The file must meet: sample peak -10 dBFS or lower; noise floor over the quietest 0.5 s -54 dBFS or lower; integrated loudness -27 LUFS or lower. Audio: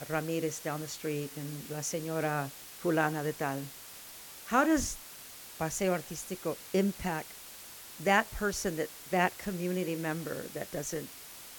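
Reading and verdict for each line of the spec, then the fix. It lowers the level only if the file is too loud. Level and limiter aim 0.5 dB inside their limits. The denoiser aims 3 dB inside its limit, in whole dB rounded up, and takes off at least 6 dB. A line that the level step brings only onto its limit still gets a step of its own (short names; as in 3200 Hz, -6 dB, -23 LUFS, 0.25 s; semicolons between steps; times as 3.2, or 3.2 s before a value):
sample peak -11.0 dBFS: OK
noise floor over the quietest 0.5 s -48 dBFS: fail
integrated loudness -33.0 LUFS: OK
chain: denoiser 9 dB, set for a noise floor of -48 dBFS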